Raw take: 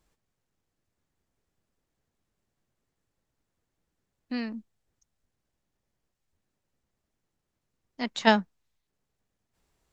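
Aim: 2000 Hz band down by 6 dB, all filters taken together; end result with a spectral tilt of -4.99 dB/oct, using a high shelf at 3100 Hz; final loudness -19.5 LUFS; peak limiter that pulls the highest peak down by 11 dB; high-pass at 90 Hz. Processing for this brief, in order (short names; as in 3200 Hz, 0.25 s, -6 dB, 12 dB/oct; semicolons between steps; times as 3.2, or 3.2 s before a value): HPF 90 Hz; bell 2000 Hz -6.5 dB; high shelf 3100 Hz -3 dB; gain +15.5 dB; limiter -3.5 dBFS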